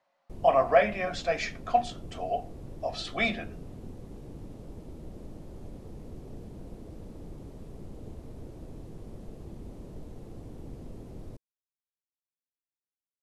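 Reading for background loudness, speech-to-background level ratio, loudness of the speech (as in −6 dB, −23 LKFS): −46.0 LKFS, 18.0 dB, −28.0 LKFS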